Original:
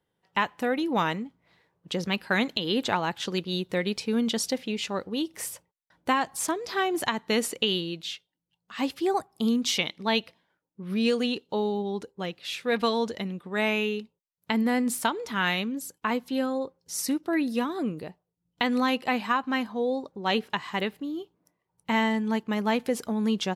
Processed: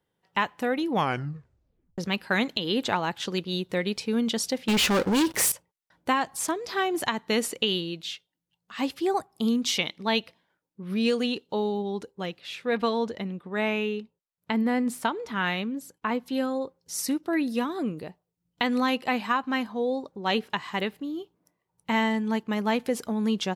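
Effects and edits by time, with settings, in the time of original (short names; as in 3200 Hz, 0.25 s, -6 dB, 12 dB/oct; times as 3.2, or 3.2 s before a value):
0.9 tape stop 1.08 s
4.68–5.52 sample leveller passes 5
12.4–16.26 high shelf 3700 Hz -9 dB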